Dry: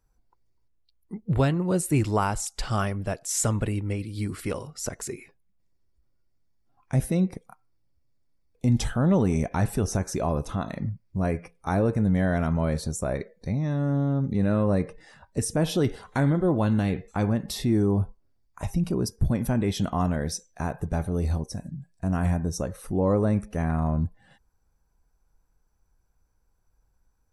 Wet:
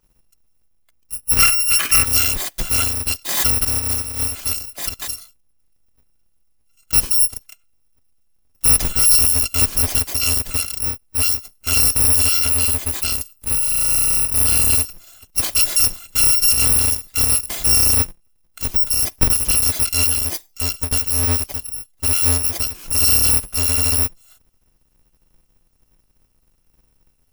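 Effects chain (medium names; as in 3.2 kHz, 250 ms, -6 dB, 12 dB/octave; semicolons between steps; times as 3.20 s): bit-reversed sample order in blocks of 256 samples; 1.38–2.05 s: time-frequency box 1.1–3.1 kHz +9 dB; 12.48–14.84 s: band-stop 5.5 kHz, Q 21; trim +7.5 dB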